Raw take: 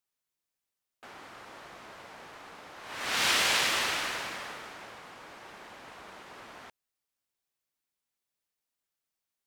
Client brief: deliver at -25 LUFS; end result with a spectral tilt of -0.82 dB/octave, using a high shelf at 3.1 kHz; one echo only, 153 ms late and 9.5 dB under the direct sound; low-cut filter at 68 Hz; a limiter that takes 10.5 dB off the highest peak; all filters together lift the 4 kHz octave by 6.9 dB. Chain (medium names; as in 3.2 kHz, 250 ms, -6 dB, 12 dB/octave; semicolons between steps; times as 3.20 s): high-pass 68 Hz; treble shelf 3.1 kHz +6.5 dB; peaking EQ 4 kHz +4 dB; peak limiter -19.5 dBFS; delay 153 ms -9.5 dB; trim +3.5 dB